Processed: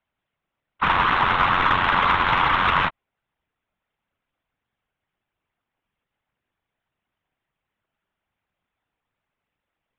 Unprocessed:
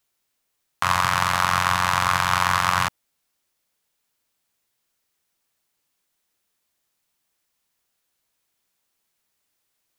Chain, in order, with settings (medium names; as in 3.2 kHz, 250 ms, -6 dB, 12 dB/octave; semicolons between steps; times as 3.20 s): local Wiener filter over 9 samples; LPC vocoder at 8 kHz pitch kept; whisper effect; in parallel at -9.5 dB: saturation -16 dBFS, distortion -15 dB